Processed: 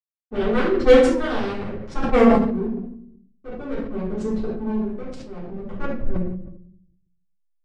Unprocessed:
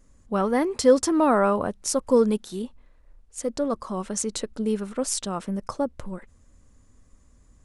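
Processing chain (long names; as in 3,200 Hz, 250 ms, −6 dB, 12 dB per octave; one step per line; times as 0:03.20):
adaptive Wiener filter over 25 samples
hum removal 49.79 Hz, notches 4
harmonic generator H 7 −10 dB, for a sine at −6.5 dBFS
graphic EQ with 15 bands 1,000 Hz −8 dB, 2,500 Hz −8 dB, 10,000 Hz +6 dB
low-pass that shuts in the quiet parts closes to 900 Hz, open at −20 dBFS
shaped tremolo triangle 0.53 Hz, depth 70%
slack as between gear wheels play −38 dBFS
high-frequency loss of the air 110 metres
rectangular room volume 130 cubic metres, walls mixed, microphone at 3.6 metres
level that may fall only so fast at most 56 dB per second
level −5 dB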